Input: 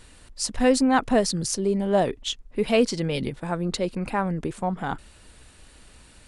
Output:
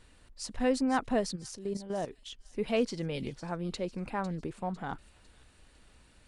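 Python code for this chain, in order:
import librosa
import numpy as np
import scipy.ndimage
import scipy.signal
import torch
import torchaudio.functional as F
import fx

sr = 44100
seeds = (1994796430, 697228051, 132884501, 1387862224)

y = fx.high_shelf(x, sr, hz=6100.0, db=-8.0)
y = fx.level_steps(y, sr, step_db=12, at=(1.35, 2.31), fade=0.02)
y = fx.echo_wet_highpass(y, sr, ms=502, feedback_pct=44, hz=4500.0, wet_db=-9.0)
y = y * 10.0 ** (-8.5 / 20.0)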